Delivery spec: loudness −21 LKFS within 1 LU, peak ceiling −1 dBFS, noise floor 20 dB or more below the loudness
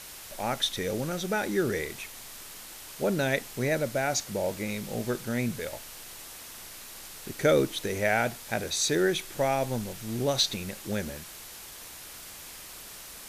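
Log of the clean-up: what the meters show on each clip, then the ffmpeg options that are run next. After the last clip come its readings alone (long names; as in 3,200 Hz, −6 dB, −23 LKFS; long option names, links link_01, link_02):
background noise floor −45 dBFS; target noise floor −49 dBFS; integrated loudness −29.0 LKFS; sample peak −10.5 dBFS; target loudness −21.0 LKFS
→ -af "afftdn=noise_reduction=6:noise_floor=-45"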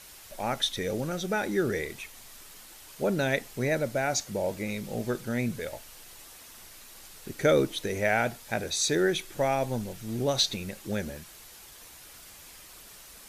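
background noise floor −50 dBFS; integrated loudness −29.0 LKFS; sample peak −11.0 dBFS; target loudness −21.0 LKFS
→ -af "volume=8dB"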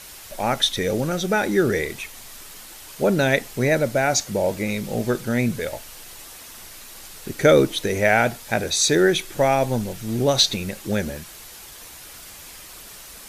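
integrated loudness −21.0 LKFS; sample peak −3.0 dBFS; background noise floor −42 dBFS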